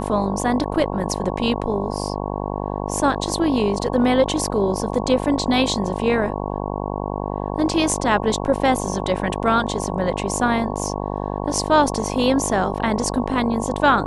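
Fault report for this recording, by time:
buzz 50 Hz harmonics 22 -26 dBFS

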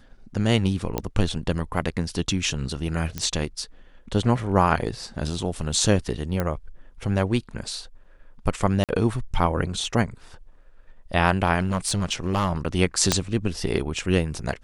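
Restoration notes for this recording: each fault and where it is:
0.98 pop -11 dBFS
3.18 pop -13 dBFS
6.4 pop -12 dBFS
8.84–8.89 gap 47 ms
11.59–12.51 clipped -17.5 dBFS
13.12 pop -3 dBFS

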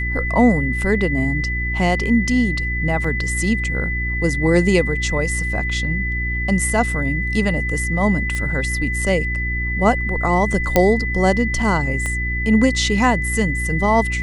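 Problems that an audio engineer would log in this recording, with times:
hum 60 Hz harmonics 6 -24 dBFS
tone 2000 Hz -23 dBFS
3.04 gap 4.2 ms
8.35 pop -12 dBFS
10.76 pop 0 dBFS
12.06 pop -12 dBFS

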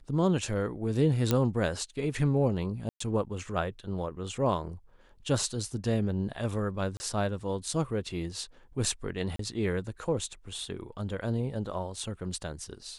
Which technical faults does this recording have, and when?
1.31 pop -11 dBFS
2.89–3 gap 0.114 s
6.97–7 gap 30 ms
9.36–9.39 gap 33 ms

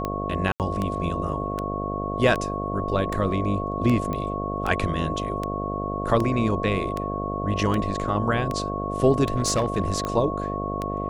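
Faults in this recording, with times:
buzz 50 Hz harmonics 14 -30 dBFS
tick 78 rpm -14 dBFS
tone 1100 Hz -30 dBFS
0.52–0.6 gap 78 ms
4.13 pop -17 dBFS
9.34–10.1 clipped -17 dBFS

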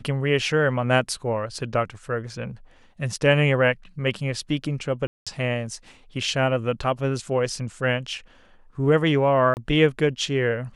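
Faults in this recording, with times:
5.07–5.27 gap 0.196 s
9.54–9.57 gap 29 ms

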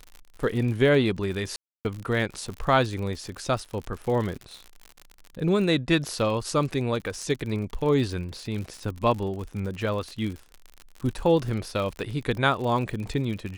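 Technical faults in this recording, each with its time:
crackle 66/s -32 dBFS
1.56–1.85 gap 0.289 s

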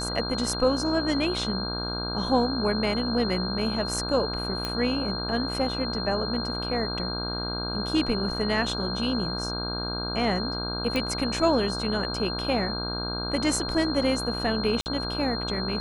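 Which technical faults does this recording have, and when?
buzz 60 Hz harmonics 27 -33 dBFS
tone 4200 Hz -32 dBFS
4.65 pop -14 dBFS
10.96 pop -14 dBFS
14.81–14.86 gap 49 ms

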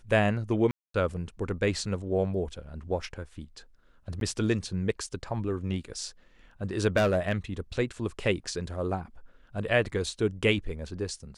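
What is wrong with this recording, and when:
0.71–0.94 gap 0.233 s
4.2–4.21 gap 12 ms
6.96–7.35 clipped -19.5 dBFS

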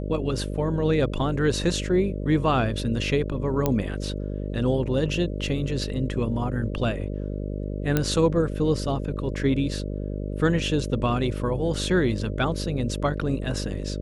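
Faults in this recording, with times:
buzz 50 Hz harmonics 12 -30 dBFS
3.66 pop -9 dBFS
7.97 pop -8 dBFS

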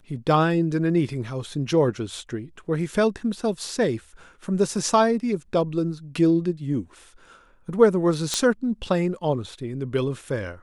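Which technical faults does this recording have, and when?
8.34 pop -8 dBFS

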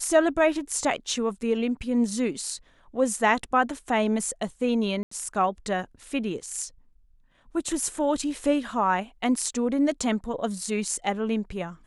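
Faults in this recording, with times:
5.03–5.11 gap 84 ms

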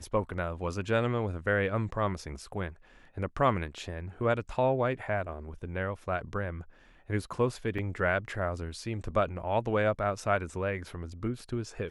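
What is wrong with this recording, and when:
7.78–7.79 gap 5.2 ms

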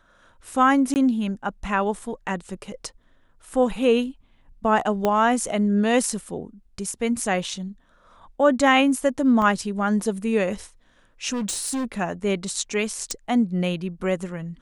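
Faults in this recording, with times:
0.94–0.96 gap 19 ms
5.05 pop -9 dBFS
9.42 gap 2 ms
11.32–11.85 clipped -23 dBFS
13.11 pop -11 dBFS

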